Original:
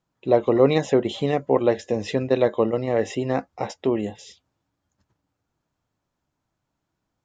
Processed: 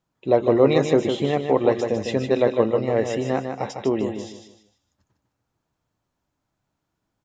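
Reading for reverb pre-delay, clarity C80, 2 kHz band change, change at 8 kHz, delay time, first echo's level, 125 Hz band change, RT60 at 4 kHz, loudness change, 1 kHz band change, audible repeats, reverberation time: no reverb, no reverb, +1.0 dB, no reading, 152 ms, -6.5 dB, +1.0 dB, no reverb, +1.0 dB, +1.0 dB, 4, no reverb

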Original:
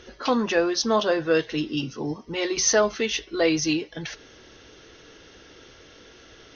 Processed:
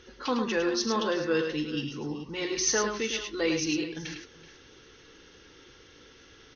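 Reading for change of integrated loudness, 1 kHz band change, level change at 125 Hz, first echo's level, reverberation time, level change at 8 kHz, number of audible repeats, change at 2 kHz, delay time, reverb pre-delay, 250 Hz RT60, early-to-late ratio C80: -5.0 dB, -5.5 dB, -4.5 dB, -13.5 dB, no reverb, no reading, 4, -4.5 dB, 40 ms, no reverb, no reverb, no reverb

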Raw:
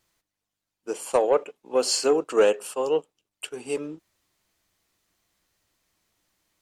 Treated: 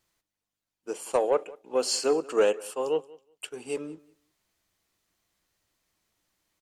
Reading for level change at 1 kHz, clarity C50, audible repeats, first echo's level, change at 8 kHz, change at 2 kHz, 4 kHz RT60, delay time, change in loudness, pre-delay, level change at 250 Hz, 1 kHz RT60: -3.5 dB, no reverb, 1, -22.5 dB, -3.5 dB, -3.5 dB, no reverb, 184 ms, -3.5 dB, no reverb, -3.5 dB, no reverb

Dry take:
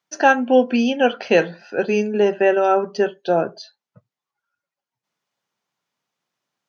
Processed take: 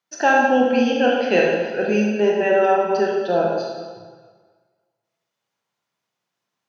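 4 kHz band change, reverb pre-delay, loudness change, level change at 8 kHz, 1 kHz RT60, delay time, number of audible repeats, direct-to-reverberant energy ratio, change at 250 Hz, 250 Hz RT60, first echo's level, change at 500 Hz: 0.0 dB, 22 ms, 0.0 dB, no reading, 1.6 s, no echo, no echo, -2.0 dB, 0.0 dB, 1.5 s, no echo, 0.0 dB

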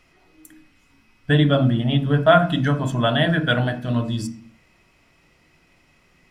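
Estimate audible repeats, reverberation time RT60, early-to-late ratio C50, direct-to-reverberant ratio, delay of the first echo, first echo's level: no echo, 0.45 s, 12.0 dB, 7.5 dB, no echo, no echo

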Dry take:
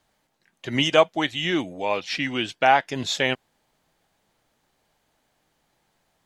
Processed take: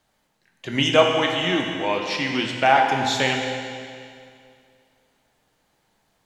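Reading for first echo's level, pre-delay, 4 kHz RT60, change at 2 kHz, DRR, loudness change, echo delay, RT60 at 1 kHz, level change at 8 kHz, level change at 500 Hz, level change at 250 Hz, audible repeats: no echo, 15 ms, 2.2 s, +2.5 dB, 1.5 dB, +2.0 dB, no echo, 2.3 s, +2.5 dB, +2.0 dB, +2.0 dB, no echo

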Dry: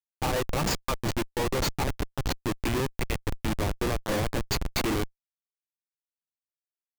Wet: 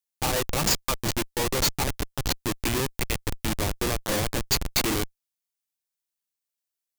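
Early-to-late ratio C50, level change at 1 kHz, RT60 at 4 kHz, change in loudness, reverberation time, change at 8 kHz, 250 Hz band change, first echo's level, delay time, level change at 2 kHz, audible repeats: no reverb, +1.0 dB, no reverb, +3.5 dB, no reverb, +8.5 dB, 0.0 dB, no echo, no echo, +2.5 dB, no echo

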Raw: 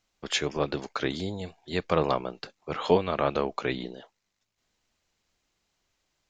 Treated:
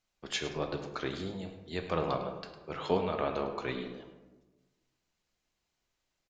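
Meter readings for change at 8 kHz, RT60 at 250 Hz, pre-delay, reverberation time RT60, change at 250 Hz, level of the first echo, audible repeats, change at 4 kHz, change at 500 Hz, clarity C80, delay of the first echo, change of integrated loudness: no reading, 1.4 s, 3 ms, 1.2 s, -5.5 dB, -12.0 dB, 1, -6.5 dB, -6.0 dB, 8.5 dB, 105 ms, -6.5 dB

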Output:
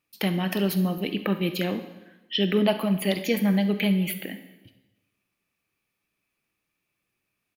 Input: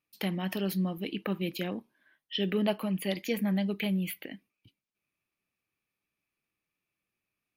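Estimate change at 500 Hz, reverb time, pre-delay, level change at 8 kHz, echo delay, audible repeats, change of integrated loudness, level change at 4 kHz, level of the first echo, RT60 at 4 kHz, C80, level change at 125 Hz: +7.0 dB, 1.1 s, 27 ms, +7.0 dB, 69 ms, 1, +7.0 dB, +7.0 dB, -16.5 dB, 1.0 s, 13.0 dB, +6.5 dB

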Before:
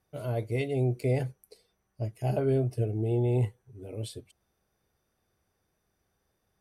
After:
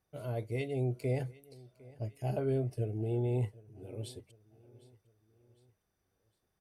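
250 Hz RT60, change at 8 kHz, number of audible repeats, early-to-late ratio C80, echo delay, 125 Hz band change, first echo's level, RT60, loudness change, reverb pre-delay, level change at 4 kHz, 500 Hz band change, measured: no reverb, -5.5 dB, 2, no reverb, 756 ms, -5.5 dB, -22.0 dB, no reverb, -5.5 dB, no reverb, -5.5 dB, -5.5 dB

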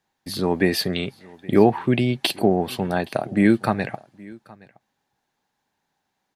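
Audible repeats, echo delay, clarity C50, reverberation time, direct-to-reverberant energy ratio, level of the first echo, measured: 1, 820 ms, no reverb, no reverb, no reverb, -23.5 dB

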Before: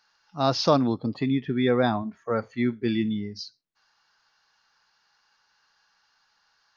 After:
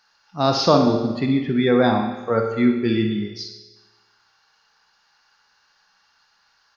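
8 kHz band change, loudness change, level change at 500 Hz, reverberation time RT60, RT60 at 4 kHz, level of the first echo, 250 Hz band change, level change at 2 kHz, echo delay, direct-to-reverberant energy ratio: no reading, +5.5 dB, +6.0 dB, 1.2 s, 1.1 s, -10.0 dB, +6.0 dB, +5.5 dB, 62 ms, 3.0 dB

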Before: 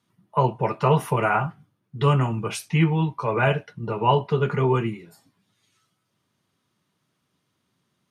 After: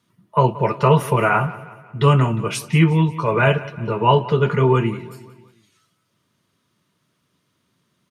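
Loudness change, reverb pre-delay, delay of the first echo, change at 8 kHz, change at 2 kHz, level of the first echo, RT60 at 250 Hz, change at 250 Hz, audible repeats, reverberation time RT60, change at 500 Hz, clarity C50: +5.0 dB, no reverb, 179 ms, +5.0 dB, +5.0 dB, -18.0 dB, no reverb, +5.0 dB, 3, no reverb, +5.0 dB, no reverb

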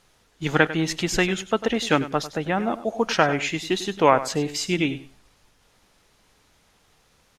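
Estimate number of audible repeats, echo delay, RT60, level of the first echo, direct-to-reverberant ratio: 2, 98 ms, no reverb, -14.5 dB, no reverb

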